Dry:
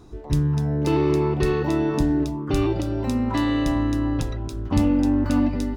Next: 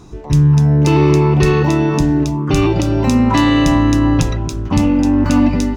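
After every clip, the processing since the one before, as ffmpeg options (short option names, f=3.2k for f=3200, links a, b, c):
-filter_complex "[0:a]equalizer=f=160:t=o:w=0.67:g=8,equalizer=f=1k:t=o:w=0.67:g=4,equalizer=f=2.5k:t=o:w=0.67:g=6,equalizer=f=6.3k:t=o:w=0.67:g=8,asplit=2[a][b];[b]alimiter=limit=-14.5dB:level=0:latency=1,volume=0.5dB[c];[a][c]amix=inputs=2:normalize=0,dynaudnorm=f=160:g=5:m=11.5dB,volume=-1dB"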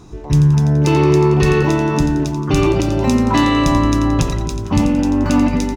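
-af "aecho=1:1:87|174|261|348|435|522:0.355|0.177|0.0887|0.0444|0.0222|0.0111,volume=-1dB"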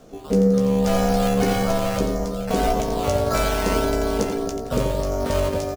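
-filter_complex "[0:a]acrossover=split=270|3700[a][b][c];[b]acrusher=samples=10:mix=1:aa=0.000001:lfo=1:lforange=6:lforate=1.7[d];[a][d][c]amix=inputs=3:normalize=0,aeval=exprs='val(0)*sin(2*PI*340*n/s)':c=same,asplit=2[e][f];[f]adelay=15,volume=-7dB[g];[e][g]amix=inputs=2:normalize=0,volume=-4dB"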